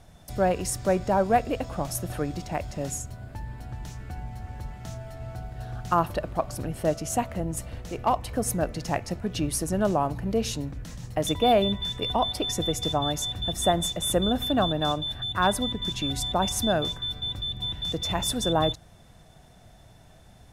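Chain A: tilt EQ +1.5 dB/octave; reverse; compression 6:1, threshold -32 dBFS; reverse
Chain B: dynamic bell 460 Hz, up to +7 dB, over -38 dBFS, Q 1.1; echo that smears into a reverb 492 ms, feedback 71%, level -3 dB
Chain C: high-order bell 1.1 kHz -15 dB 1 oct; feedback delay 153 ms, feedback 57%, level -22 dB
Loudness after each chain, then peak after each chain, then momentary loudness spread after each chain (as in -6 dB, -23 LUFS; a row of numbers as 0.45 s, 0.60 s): -35.0 LUFS, -21.5 LUFS, -27.5 LUFS; -19.0 dBFS, -4.5 dBFS, -11.5 dBFS; 11 LU, 11 LU, 14 LU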